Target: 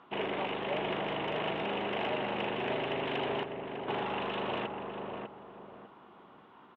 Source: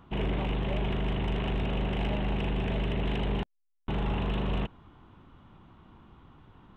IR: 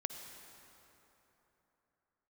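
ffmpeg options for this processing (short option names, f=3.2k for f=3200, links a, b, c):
-filter_complex "[0:a]highpass=410,lowpass=3.5k,asplit=2[a][b];[b]adelay=600,lowpass=f=1.2k:p=1,volume=-3.5dB,asplit=2[c][d];[d]adelay=600,lowpass=f=1.2k:p=1,volume=0.34,asplit=2[e][f];[f]adelay=600,lowpass=f=1.2k:p=1,volume=0.34,asplit=2[g][h];[h]adelay=600,lowpass=f=1.2k:p=1,volume=0.34[i];[a][c][e][g][i]amix=inputs=5:normalize=0,volume=3dB"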